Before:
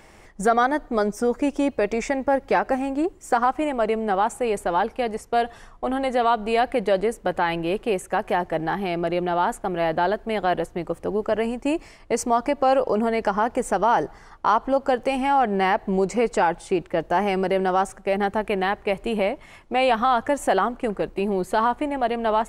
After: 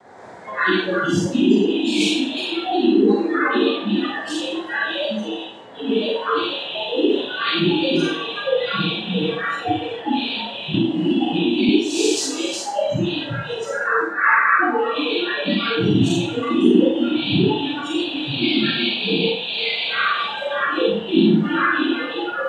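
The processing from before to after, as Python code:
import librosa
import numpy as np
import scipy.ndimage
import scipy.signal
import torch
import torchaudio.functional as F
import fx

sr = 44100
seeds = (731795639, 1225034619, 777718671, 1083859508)

p1 = fx.spec_swells(x, sr, rise_s=1.58)
p2 = fx.high_shelf(p1, sr, hz=2300.0, db=-4.0)
p3 = fx.hum_notches(p2, sr, base_hz=60, count=6)
p4 = fx.over_compress(p3, sr, threshold_db=-22.0, ratio=-0.5)
p5 = p3 + (p4 * librosa.db_to_amplitude(1.5))
p6 = fx.noise_vocoder(p5, sr, seeds[0], bands=6)
p7 = p6 + fx.echo_feedback(p6, sr, ms=363, feedback_pct=42, wet_db=-5, dry=0)
p8 = fx.noise_reduce_blind(p7, sr, reduce_db=27)
p9 = fx.rev_schroeder(p8, sr, rt60_s=0.51, comb_ms=33, drr_db=-2.0)
p10 = fx.band_squash(p9, sr, depth_pct=100, at=(10.74, 11.69))
y = p10 * librosa.db_to_amplitude(-1.5)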